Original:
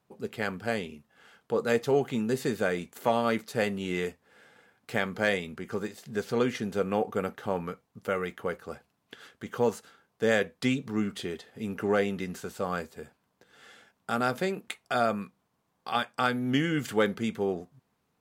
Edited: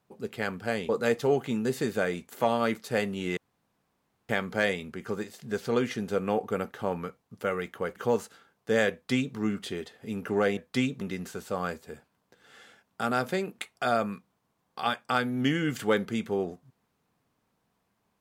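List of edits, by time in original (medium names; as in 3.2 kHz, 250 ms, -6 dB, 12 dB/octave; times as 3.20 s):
0.89–1.53 s: delete
4.01–4.93 s: room tone
8.60–9.49 s: delete
10.45–10.89 s: copy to 12.10 s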